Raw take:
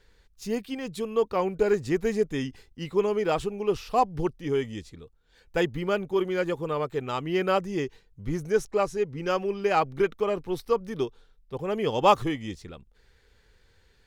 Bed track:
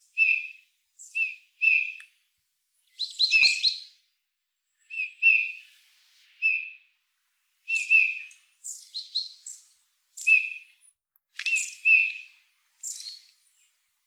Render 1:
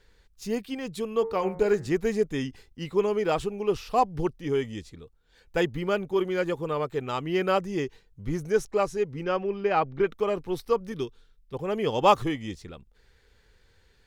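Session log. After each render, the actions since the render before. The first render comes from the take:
0:01.13–0:01.91: hum removal 90.3 Hz, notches 24
0:09.23–0:10.07: high-frequency loss of the air 190 metres
0:10.92–0:11.54: parametric band 690 Hz −9.5 dB 1.3 octaves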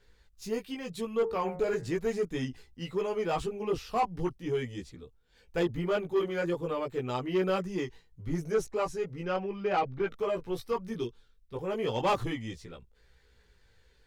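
multi-voice chorus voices 2, 0.41 Hz, delay 17 ms, depth 1.1 ms
soft clipping −20.5 dBFS, distortion −14 dB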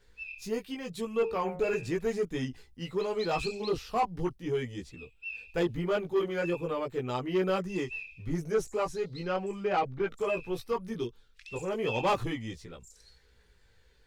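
mix in bed track −20.5 dB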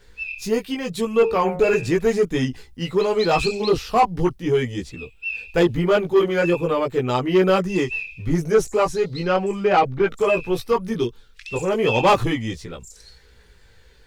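level +11.5 dB

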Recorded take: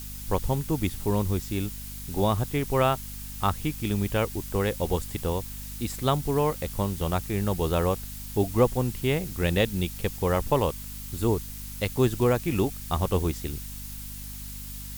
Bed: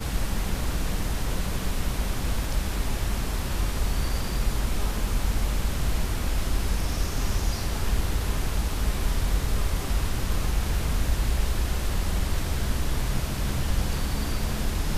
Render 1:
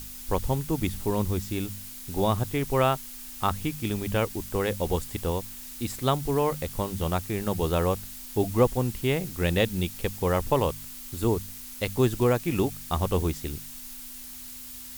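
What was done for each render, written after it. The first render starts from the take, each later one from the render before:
hum removal 50 Hz, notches 4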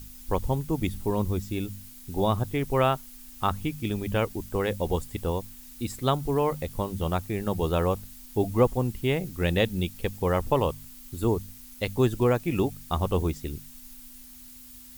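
broadband denoise 8 dB, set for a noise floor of −42 dBFS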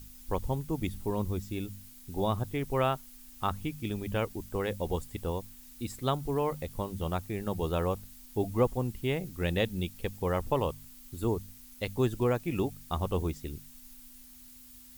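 level −5 dB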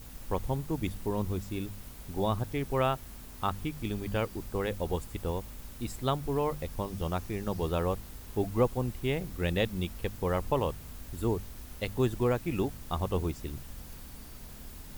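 mix in bed −20.5 dB

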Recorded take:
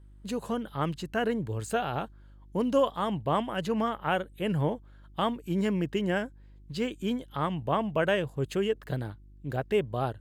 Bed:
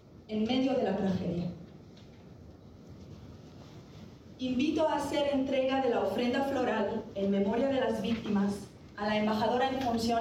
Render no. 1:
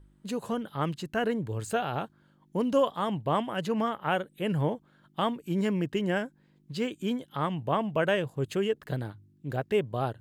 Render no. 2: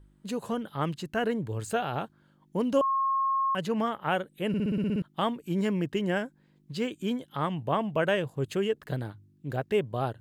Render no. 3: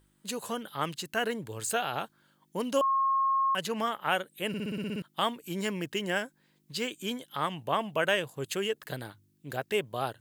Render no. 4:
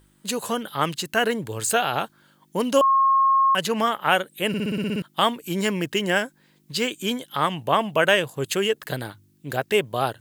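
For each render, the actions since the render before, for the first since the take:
hum removal 50 Hz, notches 2
0:02.81–0:03.55: beep over 1,080 Hz −23.5 dBFS; 0:04.48: stutter in place 0.06 s, 9 plays
spectral tilt +3 dB per octave
level +8.5 dB

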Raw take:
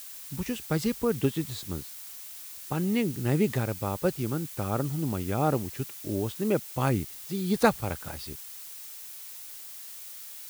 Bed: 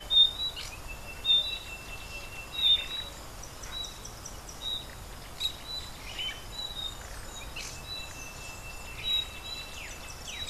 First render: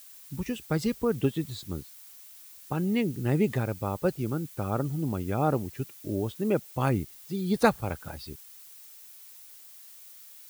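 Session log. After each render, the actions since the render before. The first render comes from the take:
broadband denoise 8 dB, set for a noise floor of −43 dBFS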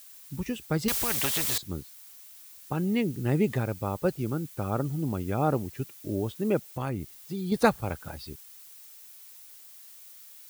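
0:00.88–0:01.58: every bin compressed towards the loudest bin 4 to 1
0:06.66–0:07.52: downward compressor 3 to 1, threshold −29 dBFS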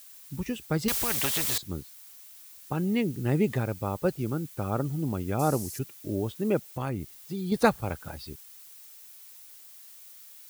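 0:05.39–0:05.79: flat-topped bell 7,500 Hz +15 dB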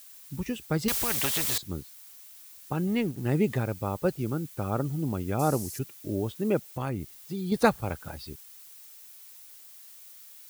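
0:02.87–0:03.35: mu-law and A-law mismatch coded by A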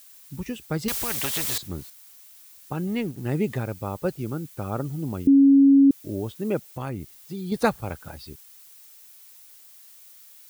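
0:01.33–0:01.90: mu-law and A-law mismatch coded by mu
0:05.27–0:05.91: beep over 276 Hz −11 dBFS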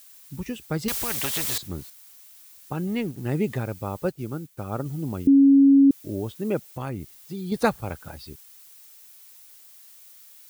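0:04.09–0:04.86: expander for the loud parts, over −47 dBFS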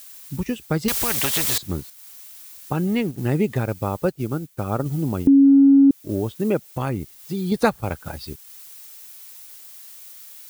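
transient designer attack 0 dB, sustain −5 dB
in parallel at +2.5 dB: downward compressor, threshold −27 dBFS, peak gain reduction 12.5 dB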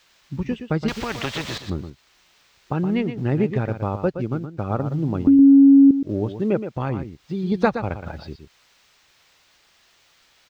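high-frequency loss of the air 190 metres
single-tap delay 120 ms −9.5 dB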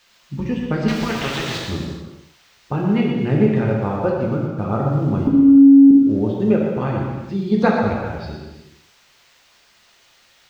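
reverb whose tail is shaped and stops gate 460 ms falling, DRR −2 dB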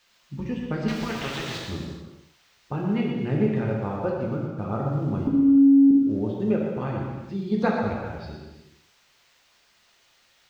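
level −7 dB

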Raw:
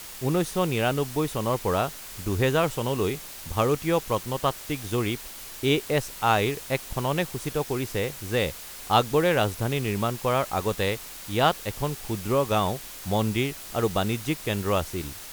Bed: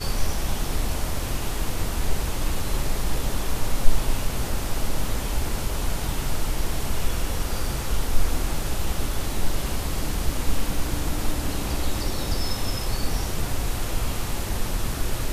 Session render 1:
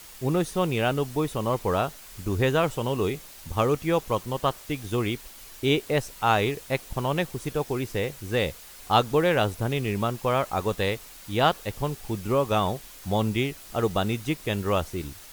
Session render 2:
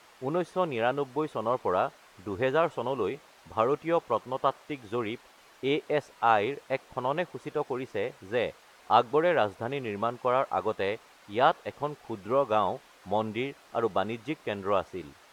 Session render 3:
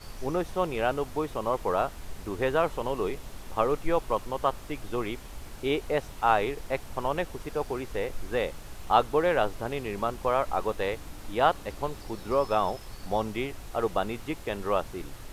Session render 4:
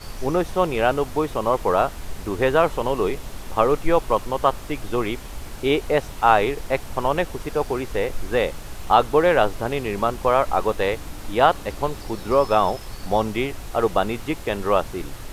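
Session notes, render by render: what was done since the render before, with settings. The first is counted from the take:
broadband denoise 6 dB, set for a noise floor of −41 dBFS
resonant band-pass 840 Hz, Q 0.65
mix in bed −17 dB
level +7.5 dB; brickwall limiter −3 dBFS, peak gain reduction 2.5 dB

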